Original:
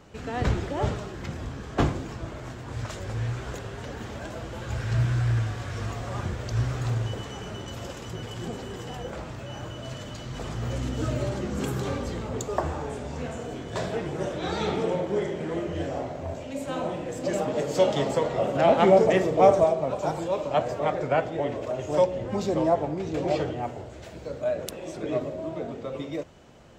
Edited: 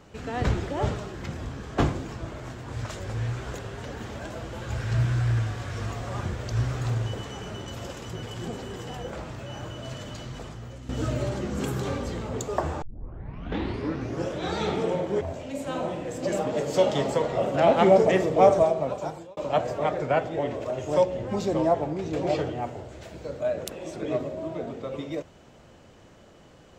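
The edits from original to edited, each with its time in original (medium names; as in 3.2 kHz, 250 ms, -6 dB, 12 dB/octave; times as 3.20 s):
10.23–10.89 s: fade out quadratic, to -13 dB
12.82 s: tape start 1.56 s
15.21–16.22 s: delete
19.85–20.38 s: fade out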